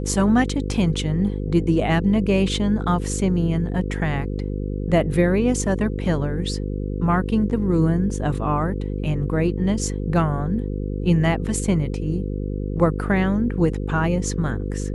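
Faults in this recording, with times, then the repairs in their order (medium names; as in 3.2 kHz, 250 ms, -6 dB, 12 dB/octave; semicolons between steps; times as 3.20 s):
buzz 50 Hz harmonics 10 -26 dBFS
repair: de-hum 50 Hz, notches 10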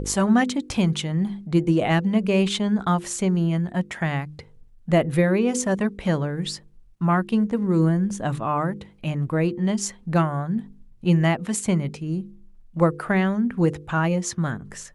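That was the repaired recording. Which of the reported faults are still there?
nothing left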